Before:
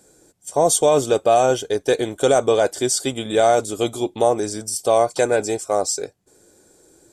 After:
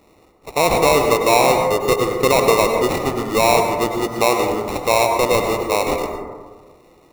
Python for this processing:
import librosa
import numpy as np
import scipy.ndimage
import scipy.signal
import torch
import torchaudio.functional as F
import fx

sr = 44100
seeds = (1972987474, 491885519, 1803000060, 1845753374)

y = fx.sample_hold(x, sr, seeds[0], rate_hz=1600.0, jitter_pct=0)
y = fx.rev_plate(y, sr, seeds[1], rt60_s=1.5, hf_ratio=0.25, predelay_ms=85, drr_db=3.0)